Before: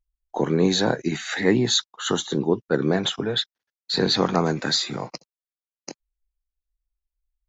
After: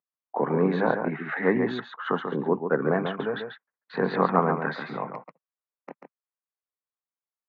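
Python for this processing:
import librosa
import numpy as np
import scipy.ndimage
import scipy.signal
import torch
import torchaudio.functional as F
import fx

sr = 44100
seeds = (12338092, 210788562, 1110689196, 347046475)

y = fx.wiener(x, sr, points=9)
y = fx.cabinet(y, sr, low_hz=170.0, low_slope=24, high_hz=2100.0, hz=(210.0, 330.0, 1100.0), db=(-4, -9, 6))
y = y + 10.0 ** (-7.0 / 20.0) * np.pad(y, (int(140 * sr / 1000.0), 0))[:len(y)]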